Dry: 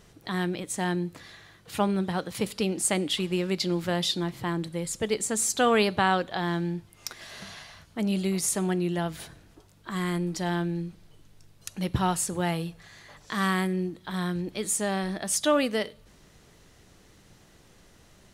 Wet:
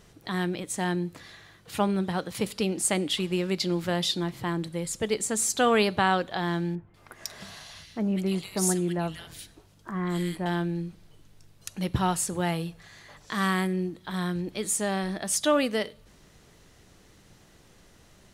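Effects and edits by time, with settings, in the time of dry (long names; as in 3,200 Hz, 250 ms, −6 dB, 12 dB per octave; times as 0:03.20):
0:06.75–0:10.46: multiband delay without the direct sound lows, highs 190 ms, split 2,000 Hz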